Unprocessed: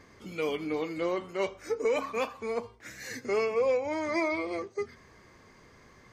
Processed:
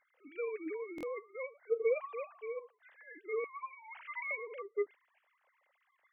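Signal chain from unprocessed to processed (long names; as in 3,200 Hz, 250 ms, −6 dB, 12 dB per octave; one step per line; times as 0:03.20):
three sine waves on the formant tracks
0:03.44–0:04.31: Butterworth high-pass 780 Hz 96 dB per octave
buffer that repeats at 0:00.96, samples 1,024, times 2
level −4.5 dB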